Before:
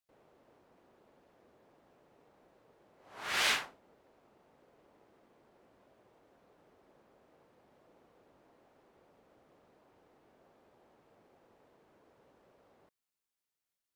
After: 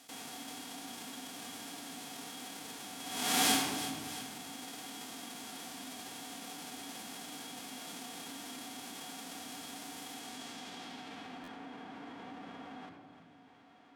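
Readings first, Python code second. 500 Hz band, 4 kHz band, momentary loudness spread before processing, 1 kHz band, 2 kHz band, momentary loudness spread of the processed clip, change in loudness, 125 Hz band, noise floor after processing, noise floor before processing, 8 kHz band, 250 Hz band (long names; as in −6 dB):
+6.5 dB, +4.0 dB, 17 LU, +6.5 dB, −1.5 dB, 12 LU, −7.5 dB, +12.0 dB, −59 dBFS, below −85 dBFS, +10.0 dB, +19.5 dB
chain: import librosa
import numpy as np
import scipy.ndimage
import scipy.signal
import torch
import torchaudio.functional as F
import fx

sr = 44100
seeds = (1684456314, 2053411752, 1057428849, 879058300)

p1 = fx.envelope_flatten(x, sr, power=0.1)
p2 = fx.filter_sweep_lowpass(p1, sr, from_hz=11000.0, to_hz=1700.0, start_s=10.11, end_s=11.61, q=0.76)
p3 = scipy.signal.sosfilt(scipy.signal.butter(2, 120.0, 'highpass', fs=sr, output='sos'), p2)
p4 = fx.small_body(p3, sr, hz=(270.0, 750.0, 3300.0), ring_ms=60, db=14)
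p5 = p4 + fx.echo_feedback(p4, sr, ms=335, feedback_pct=33, wet_db=-21.0, dry=0)
p6 = fx.room_shoebox(p5, sr, seeds[0], volume_m3=3100.0, walls='furnished', distance_m=1.7)
p7 = fx.buffer_glitch(p6, sr, at_s=(11.43,), block=512, repeats=3)
y = fx.env_flatten(p7, sr, amount_pct=50)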